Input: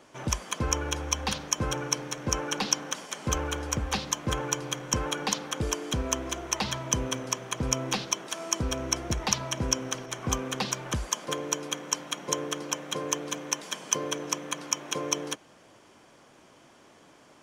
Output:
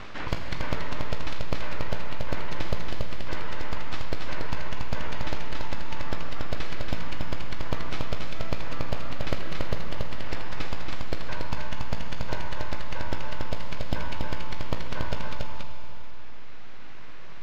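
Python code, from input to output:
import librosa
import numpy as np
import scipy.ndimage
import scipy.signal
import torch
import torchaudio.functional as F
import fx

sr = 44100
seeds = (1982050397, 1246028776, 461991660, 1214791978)

y = scipy.signal.sosfilt(scipy.signal.cheby1(6, 1.0, 410.0, 'highpass', fs=sr, output='sos'), x)
y = np.abs(y)
y = fx.air_absorb(y, sr, metres=220.0)
y = fx.doubler(y, sr, ms=18.0, db=-12)
y = y + 10.0 ** (-3.5 / 20.0) * np.pad(y, (int(281 * sr / 1000.0), 0))[:len(y)]
y = fx.rev_schroeder(y, sr, rt60_s=2.2, comb_ms=33, drr_db=7.0)
y = fx.env_flatten(y, sr, amount_pct=50)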